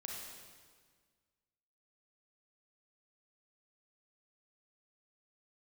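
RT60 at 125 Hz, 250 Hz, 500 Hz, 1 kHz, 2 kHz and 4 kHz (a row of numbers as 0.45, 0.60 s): 1.9, 1.9, 1.7, 1.6, 1.5, 1.5 s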